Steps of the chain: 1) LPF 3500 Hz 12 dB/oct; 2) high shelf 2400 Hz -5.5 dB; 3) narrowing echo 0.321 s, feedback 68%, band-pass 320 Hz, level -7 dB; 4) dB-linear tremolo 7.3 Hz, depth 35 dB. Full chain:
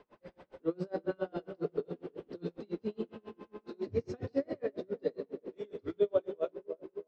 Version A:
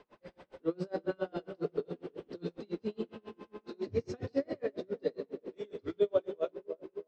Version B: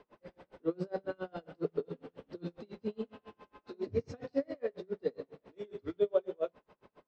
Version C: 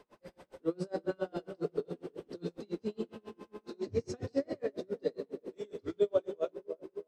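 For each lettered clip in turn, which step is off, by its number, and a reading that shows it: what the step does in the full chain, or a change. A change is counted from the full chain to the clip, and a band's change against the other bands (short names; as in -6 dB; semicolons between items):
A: 2, 4 kHz band +3.5 dB; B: 3, momentary loudness spread change +4 LU; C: 1, 4 kHz band +4.0 dB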